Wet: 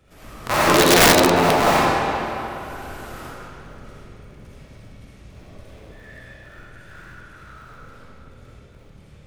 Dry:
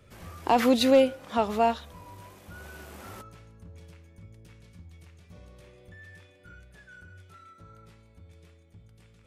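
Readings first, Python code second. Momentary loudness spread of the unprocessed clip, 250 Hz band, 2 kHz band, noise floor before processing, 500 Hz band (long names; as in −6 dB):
12 LU, +5.5 dB, +17.0 dB, −57 dBFS, +6.0 dB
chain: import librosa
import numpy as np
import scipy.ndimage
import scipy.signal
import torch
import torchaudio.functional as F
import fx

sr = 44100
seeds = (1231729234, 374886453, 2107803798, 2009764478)

y = fx.cycle_switch(x, sr, every=3, mode='inverted')
y = fx.rev_freeverb(y, sr, rt60_s=3.0, hf_ratio=0.75, predelay_ms=20, drr_db=-9.5)
y = (np.mod(10.0 ** (4.0 / 20.0) * y + 1.0, 2.0) - 1.0) / 10.0 ** (4.0 / 20.0)
y = y * librosa.db_to_amplitude(-1.5)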